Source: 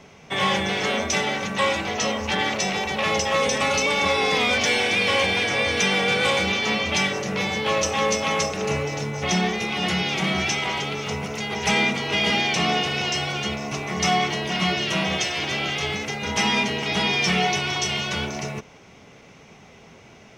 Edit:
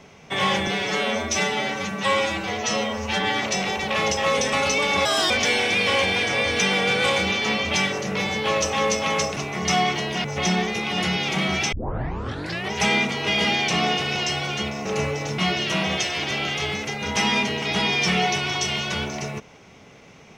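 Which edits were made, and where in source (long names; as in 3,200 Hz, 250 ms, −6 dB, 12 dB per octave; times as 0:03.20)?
0:00.67–0:02.51: time-stretch 1.5×
0:04.13–0:04.51: play speed 150%
0:08.57–0:09.10: swap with 0:13.71–0:14.59
0:10.58: tape start 1.01 s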